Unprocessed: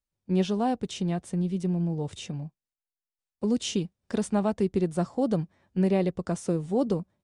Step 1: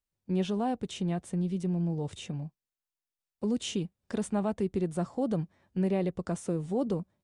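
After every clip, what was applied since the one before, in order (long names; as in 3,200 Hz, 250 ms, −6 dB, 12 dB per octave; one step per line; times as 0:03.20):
dynamic equaliser 5,100 Hz, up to −6 dB, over −55 dBFS, Q 1.9
in parallel at +1 dB: brickwall limiter −24 dBFS, peak gain reduction 8.5 dB
on the sum: level −8 dB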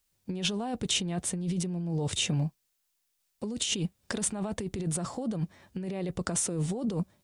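high-shelf EQ 2,400 Hz +8.5 dB
compressor whose output falls as the input rises −35 dBFS, ratio −1
level +4 dB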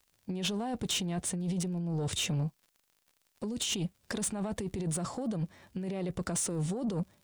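surface crackle 53 per second −49 dBFS
soft clipping −26 dBFS, distortion −15 dB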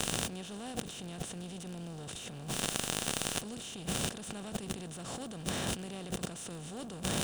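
compressor on every frequency bin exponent 0.4
compressor whose output falls as the input rises −40 dBFS, ratio −1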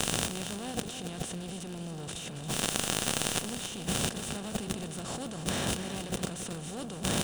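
repeating echo 276 ms, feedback 39%, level −9.5 dB
level +3.5 dB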